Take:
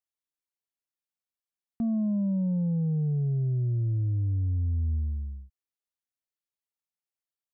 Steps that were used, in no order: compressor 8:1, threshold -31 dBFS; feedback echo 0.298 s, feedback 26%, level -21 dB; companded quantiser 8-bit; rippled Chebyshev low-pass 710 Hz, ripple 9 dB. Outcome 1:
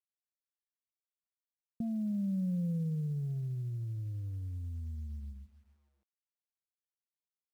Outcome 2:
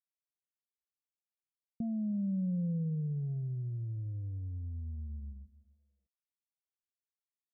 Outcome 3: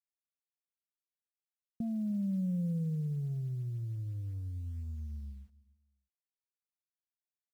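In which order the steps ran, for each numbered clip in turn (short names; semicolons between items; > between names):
feedback echo > compressor > rippled Chebyshev low-pass > companded quantiser; feedback echo > companded quantiser > compressor > rippled Chebyshev low-pass; compressor > rippled Chebyshev low-pass > companded quantiser > feedback echo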